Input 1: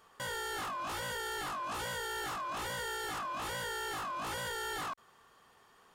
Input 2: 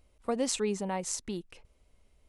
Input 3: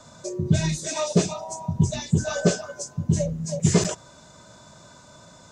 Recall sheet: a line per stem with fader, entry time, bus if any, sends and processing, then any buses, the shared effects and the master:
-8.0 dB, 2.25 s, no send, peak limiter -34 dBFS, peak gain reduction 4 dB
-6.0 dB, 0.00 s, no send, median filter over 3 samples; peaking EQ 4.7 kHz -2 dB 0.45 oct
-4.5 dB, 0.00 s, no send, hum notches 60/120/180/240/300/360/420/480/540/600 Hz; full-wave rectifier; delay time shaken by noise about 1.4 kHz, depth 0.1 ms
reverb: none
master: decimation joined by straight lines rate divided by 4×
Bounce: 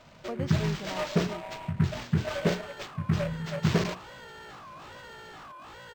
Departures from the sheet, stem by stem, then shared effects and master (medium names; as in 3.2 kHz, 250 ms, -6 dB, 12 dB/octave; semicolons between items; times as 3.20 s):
stem 1: missing peak limiter -34 dBFS, peak gain reduction 4 dB; stem 3: missing full-wave rectifier